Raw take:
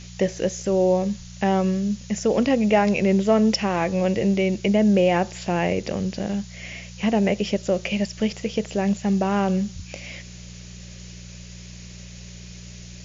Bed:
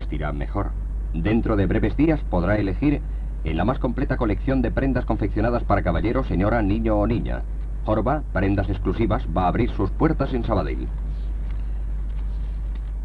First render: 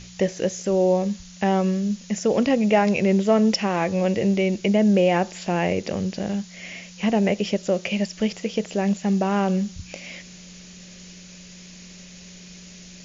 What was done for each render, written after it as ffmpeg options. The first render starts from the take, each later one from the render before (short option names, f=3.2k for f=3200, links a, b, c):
-af "bandreject=f=60:t=h:w=4,bandreject=f=120:t=h:w=4"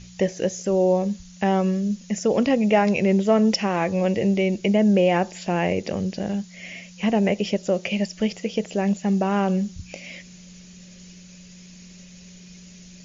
-af "afftdn=nr=6:nf=-44"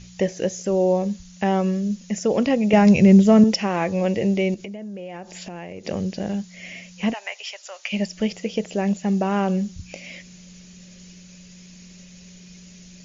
-filter_complex "[0:a]asettb=1/sr,asplit=3[a][b][c];[a]atrim=end=2.734[d];[b]atrim=start=2.73:end=3.44,asetpts=PTS-STARTPTS,afade=t=in:d=0.004:c=qsin,afade=t=out:st=0.706:d=0.004:c=qsin,bass=f=250:g=13,treble=f=4k:g=6[e];[c]atrim=start=3.436[f];[d][e]acrossfade=d=0.004:c1=hsin:c2=qsin[g];[g][f]acrossfade=d=0.004:c1=qsin:c2=hsin,asettb=1/sr,asplit=3[h][i][j];[h]atrim=end=4.544[k];[i]atrim=start=4.54:end=5.85,asetpts=PTS-STARTPTS,afade=t=in:d=0.004:c=qsin,afade=t=out:st=1.306:d=0.004:c=qsin,acompressor=threshold=-31dB:ratio=12:attack=3.2:release=140:knee=1:detection=peak[l];[j]atrim=start=5.846[m];[k][l]acrossfade=d=0.004:c1=hsin:c2=qsin[n];[n][m]acrossfade=d=0.004:c1=qsin:c2=hsin,asplit=3[o][p][q];[o]afade=t=out:st=7.12:d=0.02[r];[p]highpass=f=930:w=0.5412,highpass=f=930:w=1.3066,afade=t=in:st=7.12:d=0.02,afade=t=out:st=7.92:d=0.02[s];[q]afade=t=in:st=7.92:d=0.02[t];[r][s][t]amix=inputs=3:normalize=0"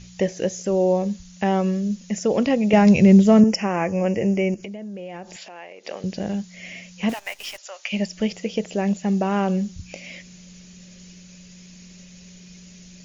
-filter_complex "[0:a]asettb=1/sr,asplit=3[a][b][c];[a]atrim=end=3.404[d];[b]atrim=start=3.4:end=4.63,asetpts=PTS-STARTPTS,afade=t=in:d=0.004:c=qsin,afade=t=out:st=1.226:d=0.004:c=qsin,asuperstop=centerf=3800:order=4:qfactor=1.7[e];[c]atrim=start=4.626[f];[d][e]acrossfade=d=0.004:c1=hsin:c2=qsin[g];[g][f]acrossfade=d=0.004:c1=qsin:c2=hsin,asettb=1/sr,asplit=3[h][i][j];[h]atrim=end=5.364[k];[i]atrim=start=5.36:end=6.04,asetpts=PTS-STARTPTS,afade=t=in:d=0.004:c=qsin,afade=t=out:st=0.676:d=0.004:c=qsin,highpass=590,lowpass=5.8k[l];[j]atrim=start=6.036[m];[k][l]acrossfade=d=0.004:c1=hsin:c2=qsin[n];[n][m]acrossfade=d=0.004:c1=qsin:c2=hsin,asettb=1/sr,asplit=3[o][p][q];[o]atrim=end=7.094[r];[p]atrim=start=7.09:end=7.58,asetpts=PTS-STARTPTS,afade=t=in:d=0.004:c=qsin,afade=t=out:st=0.486:d=0.004:c=qsin,acrusher=bits=7:dc=4:mix=0:aa=0.000001[s];[q]atrim=start=7.576[t];[r][s]acrossfade=d=0.004:c1=hsin:c2=qsin[u];[u][t]acrossfade=d=0.004:c1=qsin:c2=hsin"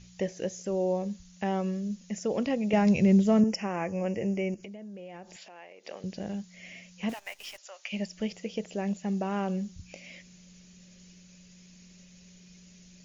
-af "volume=-9dB"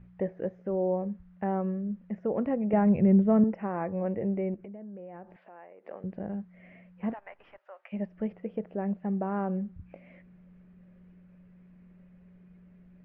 -af "lowpass=f=1.6k:w=0.5412,lowpass=f=1.6k:w=1.3066"